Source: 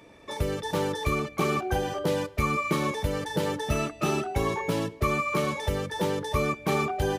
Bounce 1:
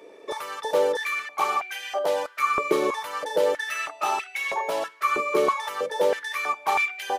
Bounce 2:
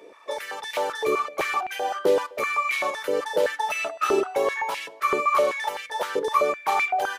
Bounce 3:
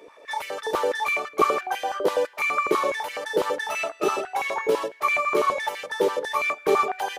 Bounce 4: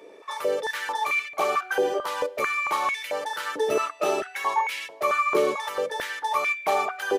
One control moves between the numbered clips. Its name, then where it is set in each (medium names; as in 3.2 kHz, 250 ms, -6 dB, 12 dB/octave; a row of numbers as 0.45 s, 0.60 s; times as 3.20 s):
step-sequenced high-pass, rate: 3.1 Hz, 7.8 Hz, 12 Hz, 4.5 Hz